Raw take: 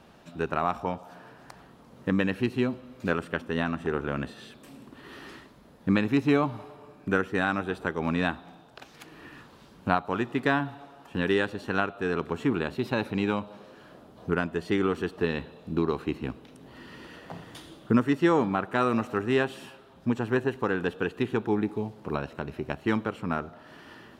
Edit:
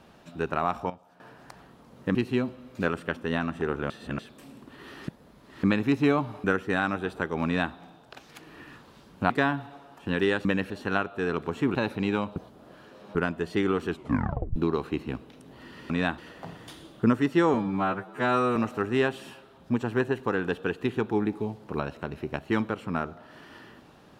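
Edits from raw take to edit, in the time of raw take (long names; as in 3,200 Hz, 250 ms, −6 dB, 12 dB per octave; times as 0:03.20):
0:00.90–0:01.20: clip gain −12 dB
0:02.15–0:02.40: move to 0:11.53
0:04.15–0:04.44: reverse
0:05.33–0:05.88: reverse
0:06.69–0:07.09: remove
0:08.10–0:08.38: duplicate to 0:17.05
0:09.95–0:10.38: remove
0:12.58–0:12.90: remove
0:13.51–0:14.30: reverse
0:15.03: tape stop 0.68 s
0:18.41–0:18.92: time-stretch 2×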